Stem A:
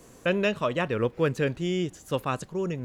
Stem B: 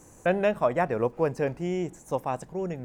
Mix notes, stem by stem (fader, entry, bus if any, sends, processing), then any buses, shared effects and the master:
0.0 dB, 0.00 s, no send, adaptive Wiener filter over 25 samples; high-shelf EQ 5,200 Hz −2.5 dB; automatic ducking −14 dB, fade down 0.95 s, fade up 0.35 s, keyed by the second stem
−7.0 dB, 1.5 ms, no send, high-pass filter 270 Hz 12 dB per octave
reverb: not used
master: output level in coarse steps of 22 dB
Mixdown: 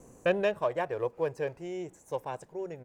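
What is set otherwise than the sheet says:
stem B: polarity flipped
master: missing output level in coarse steps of 22 dB

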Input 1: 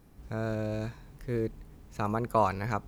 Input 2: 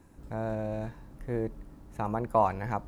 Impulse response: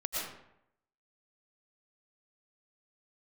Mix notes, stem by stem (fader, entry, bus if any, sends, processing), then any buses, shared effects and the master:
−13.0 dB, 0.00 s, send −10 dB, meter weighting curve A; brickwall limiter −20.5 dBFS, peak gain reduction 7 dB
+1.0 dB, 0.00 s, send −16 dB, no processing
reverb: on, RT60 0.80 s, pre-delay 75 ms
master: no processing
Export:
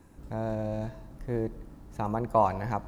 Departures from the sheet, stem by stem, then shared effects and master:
stem 2: polarity flipped
reverb return −6.0 dB

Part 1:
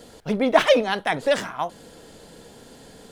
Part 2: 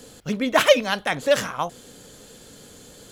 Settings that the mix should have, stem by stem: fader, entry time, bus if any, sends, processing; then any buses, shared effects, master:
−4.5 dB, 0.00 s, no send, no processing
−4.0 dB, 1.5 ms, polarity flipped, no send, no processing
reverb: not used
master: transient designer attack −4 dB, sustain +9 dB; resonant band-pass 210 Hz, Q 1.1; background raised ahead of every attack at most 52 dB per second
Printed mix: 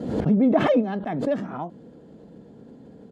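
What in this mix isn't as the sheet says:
stem 1 −4.5 dB → +3.5 dB
master: missing transient designer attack −4 dB, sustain +9 dB

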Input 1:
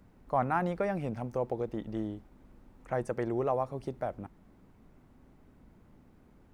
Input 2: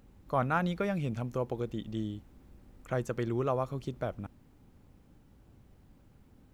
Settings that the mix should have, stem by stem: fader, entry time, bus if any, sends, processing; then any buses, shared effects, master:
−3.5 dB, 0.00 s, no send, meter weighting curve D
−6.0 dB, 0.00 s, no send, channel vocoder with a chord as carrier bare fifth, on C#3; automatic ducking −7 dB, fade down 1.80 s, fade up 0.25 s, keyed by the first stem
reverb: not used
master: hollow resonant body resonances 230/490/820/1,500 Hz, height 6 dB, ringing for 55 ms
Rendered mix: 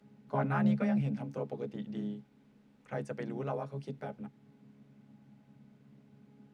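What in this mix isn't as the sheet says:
stem 1 −3.5 dB → −11.0 dB
stem 2 −6.0 dB → +0.5 dB

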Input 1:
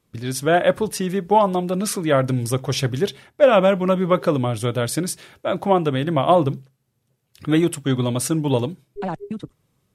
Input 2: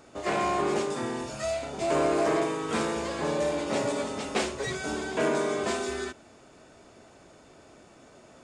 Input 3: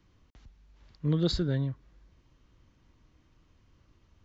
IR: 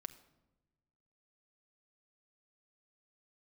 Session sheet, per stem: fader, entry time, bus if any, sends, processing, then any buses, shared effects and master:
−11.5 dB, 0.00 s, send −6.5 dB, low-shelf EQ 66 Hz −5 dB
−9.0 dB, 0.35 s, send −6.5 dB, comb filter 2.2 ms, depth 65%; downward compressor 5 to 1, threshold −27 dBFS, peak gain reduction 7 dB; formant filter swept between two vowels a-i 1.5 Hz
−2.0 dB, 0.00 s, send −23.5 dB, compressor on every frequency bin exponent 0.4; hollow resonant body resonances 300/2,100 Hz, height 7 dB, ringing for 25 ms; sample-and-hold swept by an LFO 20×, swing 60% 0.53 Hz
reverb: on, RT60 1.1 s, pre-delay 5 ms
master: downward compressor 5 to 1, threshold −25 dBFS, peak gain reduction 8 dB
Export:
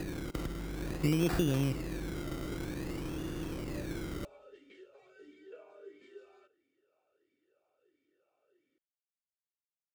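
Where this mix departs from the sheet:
stem 1: muted
stem 2 −9.0 dB → −16.0 dB

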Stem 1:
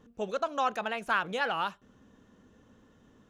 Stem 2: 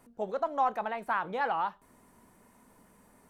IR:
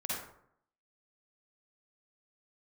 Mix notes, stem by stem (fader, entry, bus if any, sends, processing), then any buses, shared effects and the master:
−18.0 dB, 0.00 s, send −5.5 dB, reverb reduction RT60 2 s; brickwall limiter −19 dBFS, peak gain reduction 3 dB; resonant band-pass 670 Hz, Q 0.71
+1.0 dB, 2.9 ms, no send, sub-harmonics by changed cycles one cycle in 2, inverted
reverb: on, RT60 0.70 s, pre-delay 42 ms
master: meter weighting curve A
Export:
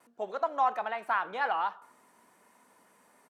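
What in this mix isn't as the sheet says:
stem 1 −18.0 dB → −11.5 dB
stem 2: missing sub-harmonics by changed cycles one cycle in 2, inverted

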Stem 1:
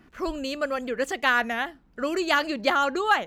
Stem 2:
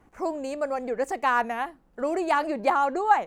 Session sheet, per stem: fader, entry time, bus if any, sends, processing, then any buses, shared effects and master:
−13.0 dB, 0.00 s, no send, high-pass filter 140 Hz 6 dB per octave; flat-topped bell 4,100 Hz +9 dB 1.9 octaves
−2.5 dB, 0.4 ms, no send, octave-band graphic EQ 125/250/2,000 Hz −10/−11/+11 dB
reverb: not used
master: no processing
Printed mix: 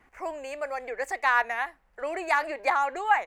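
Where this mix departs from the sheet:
stem 1: missing flat-topped bell 4,100 Hz +9 dB 1.9 octaves
stem 2: polarity flipped

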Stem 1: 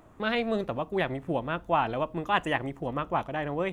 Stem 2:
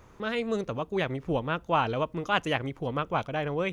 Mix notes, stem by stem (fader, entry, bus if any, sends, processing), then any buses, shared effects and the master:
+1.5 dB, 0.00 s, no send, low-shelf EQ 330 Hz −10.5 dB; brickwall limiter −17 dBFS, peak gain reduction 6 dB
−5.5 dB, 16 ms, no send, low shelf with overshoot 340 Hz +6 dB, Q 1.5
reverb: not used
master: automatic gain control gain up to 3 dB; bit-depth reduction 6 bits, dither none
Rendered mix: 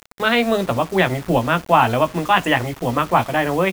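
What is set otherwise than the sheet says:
stem 1 +1.5 dB → +13.0 dB
stem 2 −5.5 dB → +2.0 dB

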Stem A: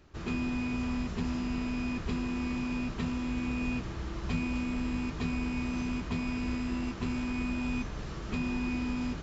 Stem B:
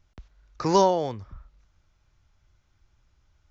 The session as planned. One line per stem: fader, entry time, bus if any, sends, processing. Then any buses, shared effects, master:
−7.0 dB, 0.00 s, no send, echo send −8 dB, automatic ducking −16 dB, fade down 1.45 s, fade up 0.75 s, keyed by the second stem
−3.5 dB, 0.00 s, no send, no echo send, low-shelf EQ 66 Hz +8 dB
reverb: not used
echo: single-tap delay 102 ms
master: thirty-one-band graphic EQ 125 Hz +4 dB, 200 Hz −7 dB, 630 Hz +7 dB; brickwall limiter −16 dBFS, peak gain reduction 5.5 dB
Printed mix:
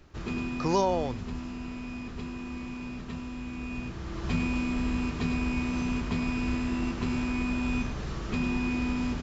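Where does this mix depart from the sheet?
stem A −7.0 dB → +3.0 dB
master: missing thirty-one-band graphic EQ 125 Hz +4 dB, 200 Hz −7 dB, 630 Hz +7 dB

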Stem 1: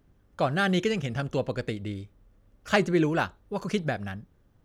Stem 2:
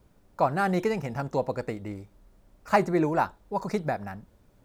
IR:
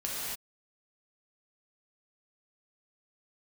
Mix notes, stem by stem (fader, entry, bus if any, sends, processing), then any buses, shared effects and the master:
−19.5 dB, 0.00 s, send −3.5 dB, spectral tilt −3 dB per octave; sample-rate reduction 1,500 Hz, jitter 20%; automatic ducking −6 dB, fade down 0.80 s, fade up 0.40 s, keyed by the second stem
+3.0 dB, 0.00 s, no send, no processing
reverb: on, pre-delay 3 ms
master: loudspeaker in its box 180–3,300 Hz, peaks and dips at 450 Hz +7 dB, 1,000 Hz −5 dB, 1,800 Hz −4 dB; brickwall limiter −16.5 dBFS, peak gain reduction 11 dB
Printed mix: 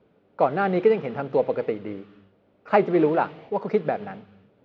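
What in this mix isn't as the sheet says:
stem 2: polarity flipped
master: missing brickwall limiter −16.5 dBFS, peak gain reduction 11 dB

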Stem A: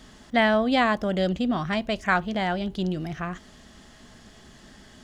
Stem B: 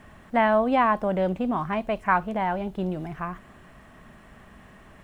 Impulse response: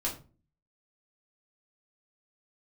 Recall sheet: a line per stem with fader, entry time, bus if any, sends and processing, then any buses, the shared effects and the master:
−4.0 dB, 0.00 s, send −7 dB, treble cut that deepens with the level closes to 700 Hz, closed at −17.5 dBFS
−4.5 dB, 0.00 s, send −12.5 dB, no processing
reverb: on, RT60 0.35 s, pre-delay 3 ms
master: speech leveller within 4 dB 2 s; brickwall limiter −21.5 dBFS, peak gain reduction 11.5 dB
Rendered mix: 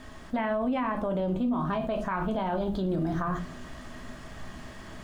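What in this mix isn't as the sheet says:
stem A −4.0 dB → −12.5 dB
reverb return +8.0 dB

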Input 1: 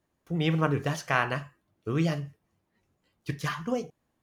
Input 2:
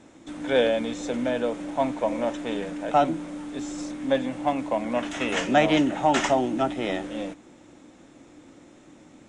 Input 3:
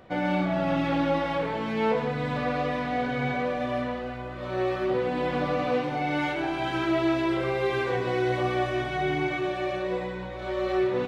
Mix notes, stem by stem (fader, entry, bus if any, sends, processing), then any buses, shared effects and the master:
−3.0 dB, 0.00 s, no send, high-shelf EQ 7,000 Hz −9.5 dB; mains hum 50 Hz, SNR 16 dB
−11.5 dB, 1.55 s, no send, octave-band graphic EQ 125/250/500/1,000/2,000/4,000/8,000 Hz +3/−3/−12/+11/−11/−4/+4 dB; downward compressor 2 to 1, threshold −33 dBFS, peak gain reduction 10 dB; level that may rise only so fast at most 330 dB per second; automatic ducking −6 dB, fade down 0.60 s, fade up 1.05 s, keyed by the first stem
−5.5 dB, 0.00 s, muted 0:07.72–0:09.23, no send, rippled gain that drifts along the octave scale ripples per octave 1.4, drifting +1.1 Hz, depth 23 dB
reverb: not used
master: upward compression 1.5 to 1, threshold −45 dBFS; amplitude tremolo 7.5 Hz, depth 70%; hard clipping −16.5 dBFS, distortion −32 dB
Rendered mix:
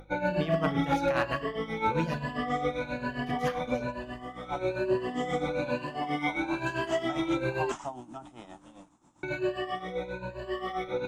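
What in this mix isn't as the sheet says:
stem 1: missing high-shelf EQ 7,000 Hz −9.5 dB
stem 2: missing downward compressor 2 to 1, threshold −33 dBFS, peak gain reduction 10 dB

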